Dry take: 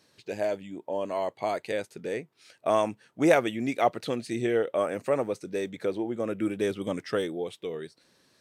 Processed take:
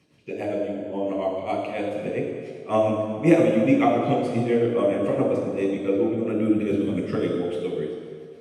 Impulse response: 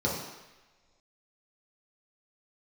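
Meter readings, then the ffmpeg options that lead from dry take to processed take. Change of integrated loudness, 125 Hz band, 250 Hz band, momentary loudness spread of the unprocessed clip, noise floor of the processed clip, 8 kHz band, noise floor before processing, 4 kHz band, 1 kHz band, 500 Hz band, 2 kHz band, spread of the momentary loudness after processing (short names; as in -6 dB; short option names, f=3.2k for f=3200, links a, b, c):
+5.5 dB, +10.5 dB, +9.0 dB, 9 LU, -41 dBFS, n/a, -66 dBFS, -0.5 dB, +2.5 dB, +4.5 dB, +0.5 dB, 10 LU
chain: -filter_complex "[0:a]tremolo=f=7.3:d=0.86[a];[1:a]atrim=start_sample=2205,asetrate=23814,aresample=44100[b];[a][b]afir=irnorm=-1:irlink=0,volume=-7.5dB"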